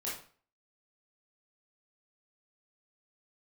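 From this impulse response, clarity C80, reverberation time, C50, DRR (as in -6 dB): 9.5 dB, 0.45 s, 3.0 dB, -7.5 dB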